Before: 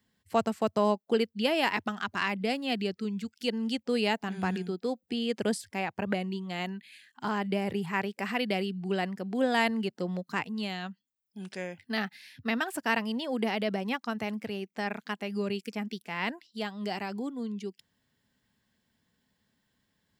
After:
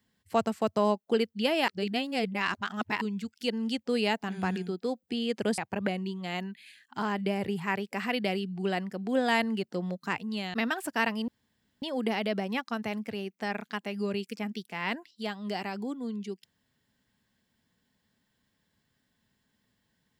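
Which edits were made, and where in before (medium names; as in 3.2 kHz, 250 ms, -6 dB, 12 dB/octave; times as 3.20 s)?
1.68–3.01 s: reverse
5.58–5.84 s: delete
10.80–12.44 s: delete
13.18 s: insert room tone 0.54 s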